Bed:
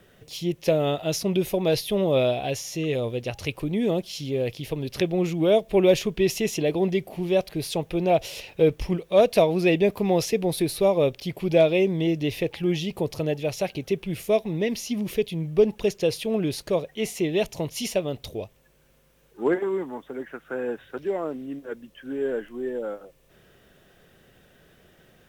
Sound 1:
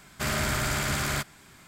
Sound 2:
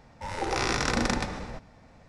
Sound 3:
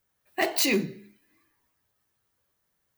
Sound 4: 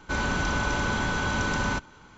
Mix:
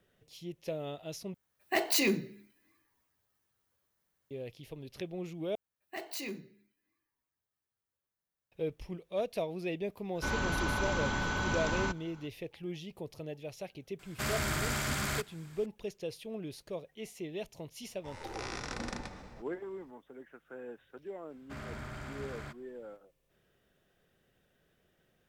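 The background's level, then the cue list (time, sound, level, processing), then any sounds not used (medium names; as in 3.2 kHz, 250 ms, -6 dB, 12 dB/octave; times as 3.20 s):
bed -16 dB
1.34 s: replace with 3 -4 dB
5.55 s: replace with 3 -16 dB
10.13 s: add 4 -6 dB, fades 0.05 s
13.99 s: add 1 -5.5 dB
17.83 s: add 2 -13 dB
21.30 s: add 1 -13.5 dB + low-pass 1.4 kHz 6 dB/octave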